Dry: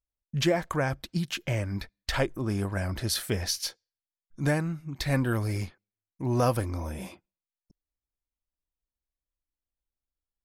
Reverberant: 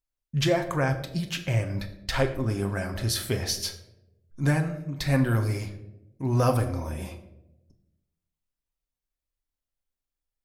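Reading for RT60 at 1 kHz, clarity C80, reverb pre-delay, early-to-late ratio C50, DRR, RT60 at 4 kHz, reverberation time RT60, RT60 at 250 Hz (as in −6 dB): 0.70 s, 13.5 dB, 8 ms, 11.0 dB, 4.5 dB, 0.50 s, 0.90 s, 1.2 s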